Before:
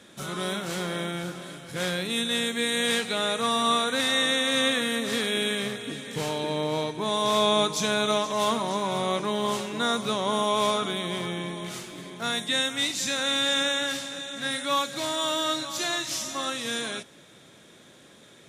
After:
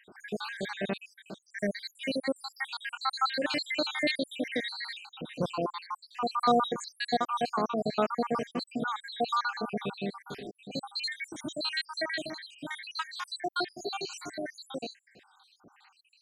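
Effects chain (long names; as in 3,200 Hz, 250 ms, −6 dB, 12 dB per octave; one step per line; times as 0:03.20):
time-frequency cells dropped at random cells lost 78%
head-to-tape spacing loss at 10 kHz 20 dB
speed change +14%
level +3 dB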